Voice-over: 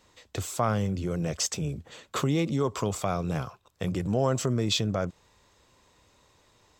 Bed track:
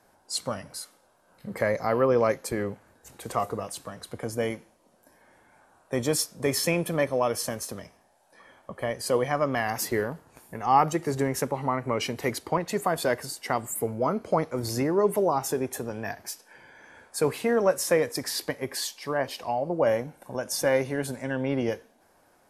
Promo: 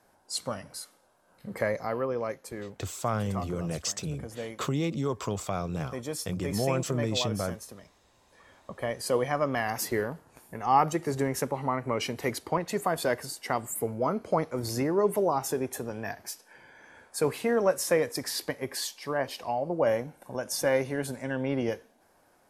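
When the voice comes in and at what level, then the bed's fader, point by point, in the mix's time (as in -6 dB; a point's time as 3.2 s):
2.45 s, -3.0 dB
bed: 1.64 s -2.5 dB
2.15 s -9.5 dB
7.81 s -9.5 dB
8.68 s -2 dB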